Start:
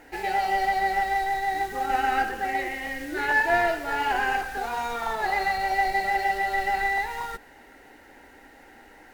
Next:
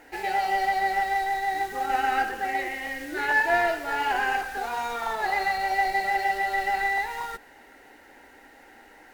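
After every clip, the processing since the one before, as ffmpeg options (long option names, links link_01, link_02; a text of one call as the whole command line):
ffmpeg -i in.wav -af "lowshelf=frequency=220:gain=-6.5" out.wav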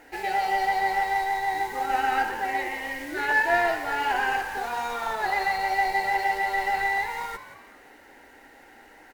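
ffmpeg -i in.wav -filter_complex "[0:a]asplit=5[link_01][link_02][link_03][link_04][link_05];[link_02]adelay=175,afreqshift=94,volume=-13dB[link_06];[link_03]adelay=350,afreqshift=188,volume=-21.4dB[link_07];[link_04]adelay=525,afreqshift=282,volume=-29.8dB[link_08];[link_05]adelay=700,afreqshift=376,volume=-38.2dB[link_09];[link_01][link_06][link_07][link_08][link_09]amix=inputs=5:normalize=0" out.wav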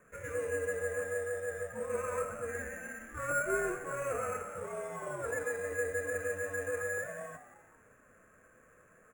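ffmpeg -i in.wav -af "flanger=delay=3.8:depth=2.3:regen=-65:speed=0.55:shape=triangular,highpass=frequency=360:width_type=q:width=0.5412,highpass=frequency=360:width_type=q:width=1.307,lowpass=frequency=2800:width_type=q:width=0.5176,lowpass=frequency=2800:width_type=q:width=0.7071,lowpass=frequency=2800:width_type=q:width=1.932,afreqshift=-300,acrusher=samples=5:mix=1:aa=0.000001,volume=-6dB" out.wav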